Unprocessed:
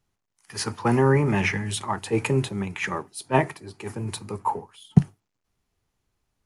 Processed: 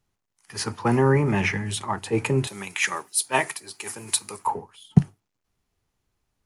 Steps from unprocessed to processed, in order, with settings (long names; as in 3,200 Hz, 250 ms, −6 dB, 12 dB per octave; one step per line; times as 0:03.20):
0:02.47–0:04.47: spectral tilt +4.5 dB per octave